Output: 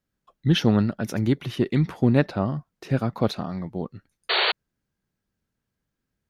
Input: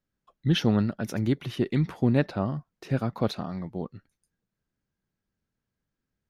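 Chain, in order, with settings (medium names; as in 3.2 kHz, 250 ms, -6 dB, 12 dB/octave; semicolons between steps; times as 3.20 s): Chebyshev shaper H 3 -26 dB, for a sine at -9.5 dBFS; painted sound noise, 4.29–4.52 s, 360–4600 Hz -26 dBFS; trim +4.5 dB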